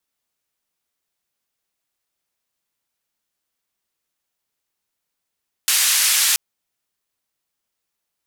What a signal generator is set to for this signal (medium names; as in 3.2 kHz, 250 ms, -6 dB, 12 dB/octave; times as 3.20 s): noise band 1.8–12 kHz, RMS -17 dBFS 0.68 s